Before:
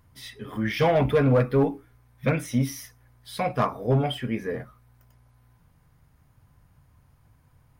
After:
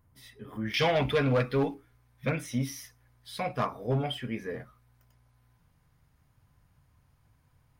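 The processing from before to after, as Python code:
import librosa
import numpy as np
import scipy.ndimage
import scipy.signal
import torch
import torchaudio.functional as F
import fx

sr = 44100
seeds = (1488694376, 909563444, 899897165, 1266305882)

y = fx.peak_eq(x, sr, hz=4000.0, db=fx.steps((0.0, -5.5), (0.74, 12.0), (1.74, 4.0)), octaves=2.4)
y = y * librosa.db_to_amplitude(-6.5)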